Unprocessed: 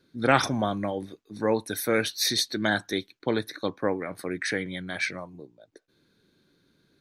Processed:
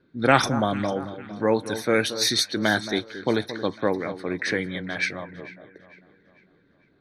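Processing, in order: echo with dull and thin repeats by turns 0.225 s, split 1400 Hz, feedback 65%, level -12 dB; low-pass opened by the level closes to 2100 Hz, open at -20 dBFS; gain +3 dB

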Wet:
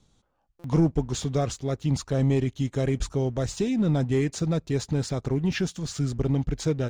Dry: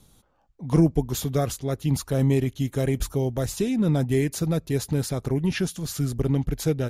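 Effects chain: steep low-pass 7900 Hz 36 dB/oct; sample leveller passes 1; stuck buffer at 0.59, samples 256, times 8; gain -4.5 dB

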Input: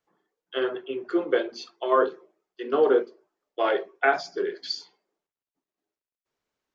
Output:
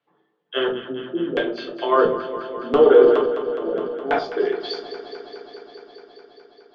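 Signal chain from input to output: HPF 110 Hz; high shelf 2100 Hz -8.5 dB; LFO low-pass square 0.73 Hz 210–3300 Hz; echo with dull and thin repeats by turns 0.104 s, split 810 Hz, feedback 89%, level -11 dB; on a send at -3 dB: reverb RT60 0.30 s, pre-delay 7 ms; 2.88–4.19 on the sum: sustainer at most 40 dB/s; gain +5 dB

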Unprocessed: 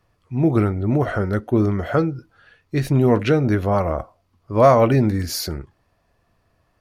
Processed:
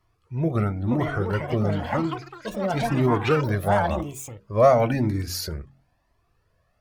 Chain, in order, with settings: de-hum 45.02 Hz, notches 7; echoes that change speed 0.624 s, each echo +7 st, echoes 3, each echo -6 dB; cascading flanger rising 0.98 Hz

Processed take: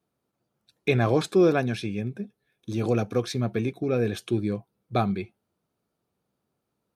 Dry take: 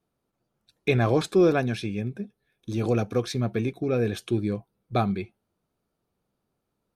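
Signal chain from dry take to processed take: HPF 74 Hz

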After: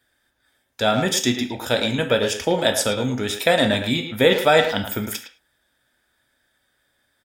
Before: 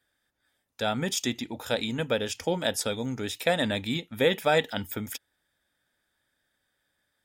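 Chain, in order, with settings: speakerphone echo 0.11 s, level -7 dB; non-linear reverb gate 0.13 s falling, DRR 6.5 dB; gain +7 dB

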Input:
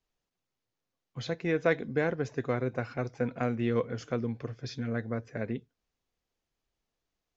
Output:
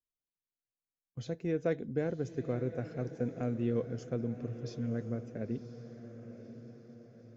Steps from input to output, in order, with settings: gate -46 dBFS, range -15 dB; graphic EQ 1000/2000/4000 Hz -11/-9/-8 dB; diffused feedback echo 1.02 s, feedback 51%, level -12 dB; gain -2 dB

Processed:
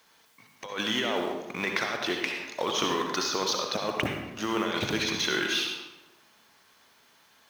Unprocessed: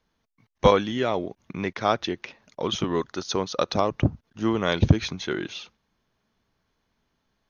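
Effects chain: G.711 law mismatch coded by mu; HPF 1100 Hz 6 dB/oct; negative-ratio compressor -34 dBFS, ratio -1; reverb RT60 1.1 s, pre-delay 56 ms, DRR 2 dB; gain +3.5 dB

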